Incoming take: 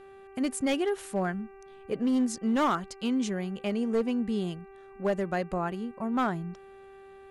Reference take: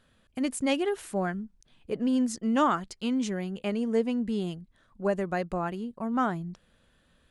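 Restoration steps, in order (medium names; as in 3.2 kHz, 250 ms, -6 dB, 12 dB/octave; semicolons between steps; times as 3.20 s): clip repair -21 dBFS; de-hum 390.5 Hz, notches 7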